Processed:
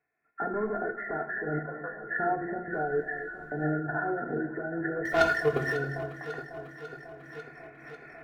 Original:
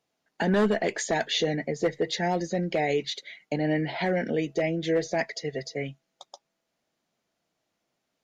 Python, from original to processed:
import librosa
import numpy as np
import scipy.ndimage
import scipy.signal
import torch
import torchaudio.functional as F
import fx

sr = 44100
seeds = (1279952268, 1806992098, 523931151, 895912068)

p1 = fx.freq_compress(x, sr, knee_hz=1300.0, ratio=4.0)
p2 = fx.recorder_agc(p1, sr, target_db=-18.5, rise_db_per_s=19.0, max_gain_db=30)
p3 = fx.ellip_bandpass(p2, sr, low_hz=540.0, high_hz=1700.0, order=3, stop_db=40, at=(1.58, 2.03), fade=0.02)
p4 = fx.leveller(p3, sr, passes=3, at=(5.05, 5.75))
p5 = fx.level_steps(p4, sr, step_db=10)
p6 = fx.dmg_noise_colour(p5, sr, seeds[0], colour='brown', level_db=-57.0, at=(2.71, 3.63), fade=0.02)
p7 = p6 + 0.57 * np.pad(p6, (int(2.8 * sr / 1000.0), 0))[:len(p6)]
p8 = p7 + fx.echo_alternate(p7, sr, ms=273, hz=930.0, feedback_pct=83, wet_db=-11.5, dry=0)
p9 = fx.rev_fdn(p8, sr, rt60_s=0.63, lf_ratio=1.35, hf_ratio=0.9, size_ms=40.0, drr_db=2.5)
y = fx.am_noise(p9, sr, seeds[1], hz=5.7, depth_pct=65)